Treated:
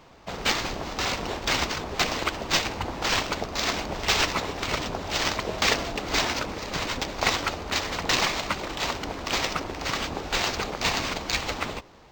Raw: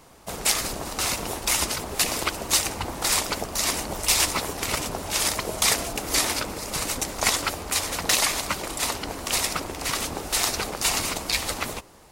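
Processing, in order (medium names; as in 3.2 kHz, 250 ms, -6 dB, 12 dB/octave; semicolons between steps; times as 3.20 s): decimation joined by straight lines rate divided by 4×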